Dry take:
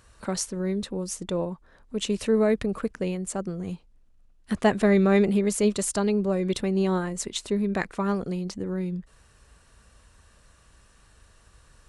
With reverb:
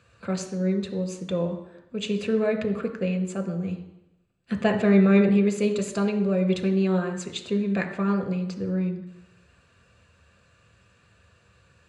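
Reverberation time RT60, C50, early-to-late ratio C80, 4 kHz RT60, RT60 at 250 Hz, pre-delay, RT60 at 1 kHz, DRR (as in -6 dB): 0.85 s, 10.0 dB, 12.0 dB, 0.90 s, 0.85 s, 3 ms, 0.85 s, 5.0 dB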